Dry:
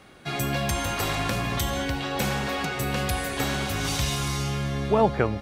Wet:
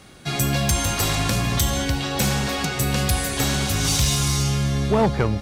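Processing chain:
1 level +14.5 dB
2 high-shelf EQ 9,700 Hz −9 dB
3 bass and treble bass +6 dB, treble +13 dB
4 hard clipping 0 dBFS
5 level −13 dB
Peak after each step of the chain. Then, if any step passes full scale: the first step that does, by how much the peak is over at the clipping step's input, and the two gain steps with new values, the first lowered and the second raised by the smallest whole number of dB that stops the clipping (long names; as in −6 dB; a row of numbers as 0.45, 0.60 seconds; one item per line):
+6.0, +6.0, +7.5, 0.0, −13.0 dBFS
step 1, 7.5 dB
step 1 +6.5 dB, step 5 −5 dB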